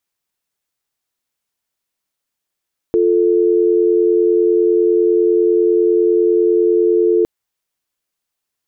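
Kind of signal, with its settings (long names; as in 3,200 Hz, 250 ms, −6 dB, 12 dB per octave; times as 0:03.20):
call progress tone dial tone, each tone −13 dBFS 4.31 s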